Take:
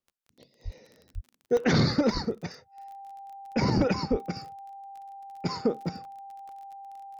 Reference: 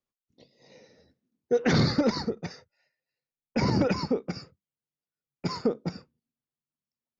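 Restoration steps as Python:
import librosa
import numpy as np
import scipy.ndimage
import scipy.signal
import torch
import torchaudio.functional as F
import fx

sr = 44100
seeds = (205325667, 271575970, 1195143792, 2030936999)

y = fx.fix_declick_ar(x, sr, threshold=6.5)
y = fx.notch(y, sr, hz=790.0, q=30.0)
y = fx.fix_deplosive(y, sr, at_s=(0.64, 1.14, 2.13, 3.76, 4.1))
y = fx.fix_interpolate(y, sr, at_s=(0.78, 1.57, 6.05, 6.49), length_ms=1.0)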